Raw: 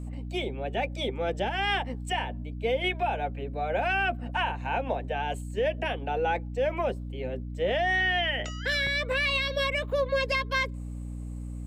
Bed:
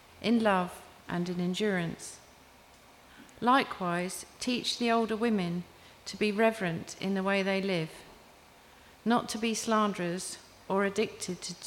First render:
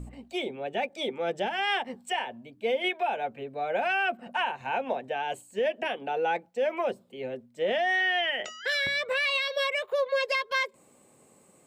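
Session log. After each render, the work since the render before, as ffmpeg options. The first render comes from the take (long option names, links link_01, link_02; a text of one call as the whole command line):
ffmpeg -i in.wav -af "bandreject=frequency=60:width_type=h:width=4,bandreject=frequency=120:width_type=h:width=4,bandreject=frequency=180:width_type=h:width=4,bandreject=frequency=240:width_type=h:width=4,bandreject=frequency=300:width_type=h:width=4" out.wav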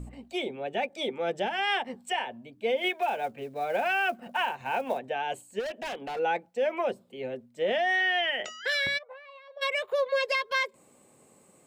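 ffmpeg -i in.wav -filter_complex "[0:a]asplit=3[link_01][link_02][link_03];[link_01]afade=type=out:start_time=2.76:duration=0.02[link_04];[link_02]acrusher=bits=7:mode=log:mix=0:aa=0.000001,afade=type=in:start_time=2.76:duration=0.02,afade=type=out:start_time=4.98:duration=0.02[link_05];[link_03]afade=type=in:start_time=4.98:duration=0.02[link_06];[link_04][link_05][link_06]amix=inputs=3:normalize=0,asplit=3[link_07][link_08][link_09];[link_07]afade=type=out:start_time=5.59:duration=0.02[link_10];[link_08]asoftclip=type=hard:threshold=-32dB,afade=type=in:start_time=5.59:duration=0.02,afade=type=out:start_time=6.18:duration=0.02[link_11];[link_09]afade=type=in:start_time=6.18:duration=0.02[link_12];[link_10][link_11][link_12]amix=inputs=3:normalize=0,asplit=3[link_13][link_14][link_15];[link_13]afade=type=out:start_time=8.97:duration=0.02[link_16];[link_14]bandpass=frequency=790:width_type=q:width=7.4,afade=type=in:start_time=8.97:duration=0.02,afade=type=out:start_time=9.61:duration=0.02[link_17];[link_15]afade=type=in:start_time=9.61:duration=0.02[link_18];[link_16][link_17][link_18]amix=inputs=3:normalize=0" out.wav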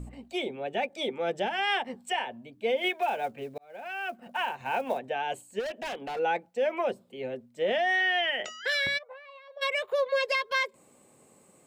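ffmpeg -i in.wav -filter_complex "[0:a]asplit=2[link_01][link_02];[link_01]atrim=end=3.58,asetpts=PTS-STARTPTS,afade=type=out:start_time=3.576:duration=0.004:curve=hsin[link_03];[link_02]atrim=start=3.58,asetpts=PTS-STARTPTS,afade=type=in:duration=1.07[link_04];[link_03][link_04]concat=n=2:v=0:a=1" out.wav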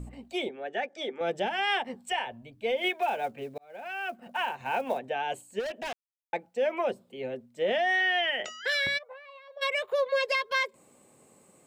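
ffmpeg -i in.wav -filter_complex "[0:a]asettb=1/sr,asplit=3[link_01][link_02][link_03];[link_01]atrim=end=0.494[link_04];[link_02]atrim=start=0.49:end=1.21,asetpts=PTS-STARTPTS,afade=type=in:duration=0.004:curve=qsin,afade=type=out:start_time=0.716:duration=0.004:curve=qsin,highpass=330,equalizer=frequency=540:width_type=q:width=4:gain=-3,equalizer=frequency=960:width_type=q:width=4:gain=-7,equalizer=frequency=1700:width_type=q:width=4:gain=7,equalizer=frequency=2500:width_type=q:width=4:gain=-7,equalizer=frequency=4100:width_type=q:width=4:gain=-8,lowpass=frequency=6700:width=0.5412,lowpass=frequency=6700:width=1.3066[link_05];[link_03]atrim=start=1.206[link_06];[link_04][link_05]acrossfade=duration=0.004:curve1=hsin:curve2=qsin[link_07];[link_07][link_06]acrossfade=duration=0.004:curve1=qsin:curve2=hsin,asplit=3[link_08][link_09][link_10];[link_08]afade=type=out:start_time=2.07:duration=0.02[link_11];[link_09]asubboost=boost=8:cutoff=96,afade=type=in:start_time=2.07:duration=0.02,afade=type=out:start_time=2.78:duration=0.02[link_12];[link_10]afade=type=in:start_time=2.78:duration=0.02[link_13];[link_11][link_12][link_13]amix=inputs=3:normalize=0,asplit=3[link_14][link_15][link_16];[link_14]atrim=end=5.93,asetpts=PTS-STARTPTS,afade=type=out:start_time=5.926:duration=0.004:curve=hsin[link_17];[link_15]atrim=start=5.93:end=6.33,asetpts=PTS-STARTPTS,volume=0[link_18];[link_16]atrim=start=6.33,asetpts=PTS-STARTPTS,afade=type=in:duration=0.004:curve=hsin[link_19];[link_17][link_18][link_19]concat=n=3:v=0:a=1" out.wav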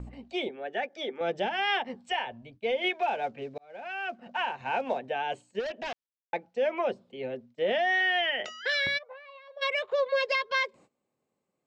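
ffmpeg -i in.wav -af "lowpass=frequency=5900:width=0.5412,lowpass=frequency=5900:width=1.3066,agate=range=-21dB:threshold=-53dB:ratio=16:detection=peak" out.wav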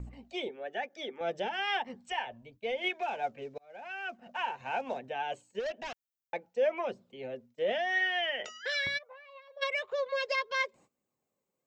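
ffmpeg -i in.wav -af "aexciter=amount=1.9:drive=3.3:freq=5800,flanger=delay=0.4:depth=1.9:regen=59:speed=1:shape=triangular" out.wav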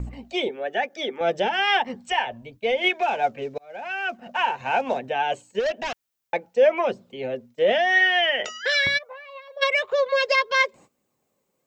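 ffmpeg -i in.wav -af "volume=11dB" out.wav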